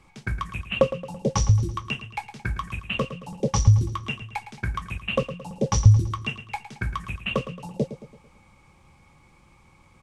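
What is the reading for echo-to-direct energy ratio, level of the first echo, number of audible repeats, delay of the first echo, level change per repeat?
−11.5 dB, −12.5 dB, 4, 111 ms, −6.5 dB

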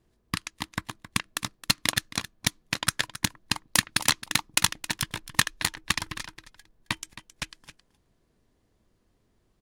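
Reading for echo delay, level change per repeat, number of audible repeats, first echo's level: 268 ms, repeats not evenly spaced, 1, −15.0 dB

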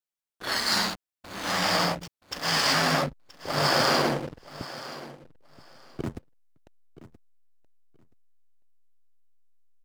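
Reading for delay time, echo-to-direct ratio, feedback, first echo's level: 976 ms, −16.5 dB, 18%, −16.5 dB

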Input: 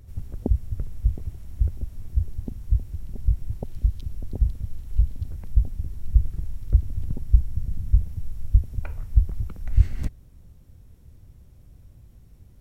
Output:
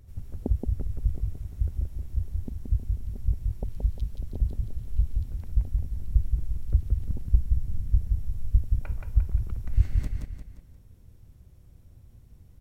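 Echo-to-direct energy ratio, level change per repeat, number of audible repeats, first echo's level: −3.0 dB, −7.5 dB, 4, −4.0 dB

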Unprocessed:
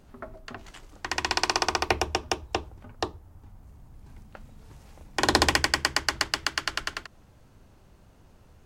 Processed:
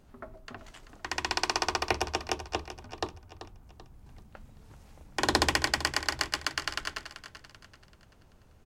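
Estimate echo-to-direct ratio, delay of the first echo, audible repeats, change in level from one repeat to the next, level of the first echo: −11.5 dB, 386 ms, 3, −8.0 dB, −12.5 dB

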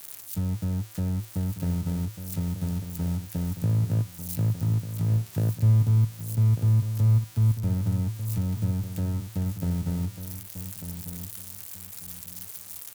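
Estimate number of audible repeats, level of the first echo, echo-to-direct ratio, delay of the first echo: 3, −10.5 dB, −10.0 dB, 1,195 ms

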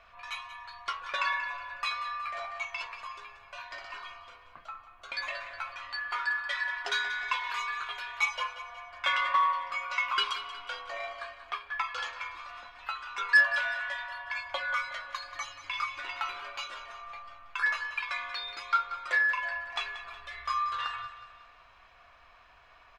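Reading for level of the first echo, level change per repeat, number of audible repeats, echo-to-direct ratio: −13.0 dB, −6.5 dB, 4, −12.0 dB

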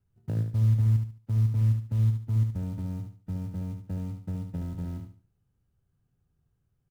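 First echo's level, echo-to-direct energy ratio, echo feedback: −6.5 dB, −6.0 dB, 29%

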